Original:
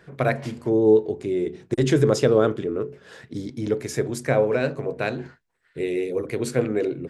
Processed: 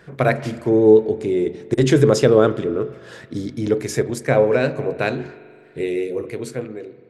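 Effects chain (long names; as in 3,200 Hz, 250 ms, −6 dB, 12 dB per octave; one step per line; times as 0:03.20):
fade-out on the ending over 1.56 s
0:04.00–0:04.40: transient designer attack −1 dB, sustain −6 dB
spring reverb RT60 2.3 s, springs 41 ms, chirp 45 ms, DRR 16 dB
level +4.5 dB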